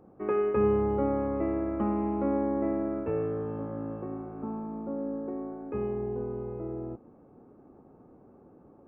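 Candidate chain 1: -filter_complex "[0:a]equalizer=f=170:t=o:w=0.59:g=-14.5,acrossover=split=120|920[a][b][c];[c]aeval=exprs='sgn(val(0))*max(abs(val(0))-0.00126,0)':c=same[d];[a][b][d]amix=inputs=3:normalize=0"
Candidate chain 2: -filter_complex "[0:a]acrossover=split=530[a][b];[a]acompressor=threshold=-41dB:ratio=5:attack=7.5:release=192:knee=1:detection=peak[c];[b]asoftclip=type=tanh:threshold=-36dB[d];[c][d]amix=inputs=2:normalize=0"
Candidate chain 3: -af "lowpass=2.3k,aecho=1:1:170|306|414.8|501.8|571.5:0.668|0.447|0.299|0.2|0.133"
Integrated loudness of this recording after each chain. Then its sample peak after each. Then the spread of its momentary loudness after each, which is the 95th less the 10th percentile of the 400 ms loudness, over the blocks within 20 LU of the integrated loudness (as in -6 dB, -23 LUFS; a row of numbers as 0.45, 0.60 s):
-33.0, -39.0, -28.5 LUFS; -17.0, -27.0, -14.0 dBFS; 13, 20, 10 LU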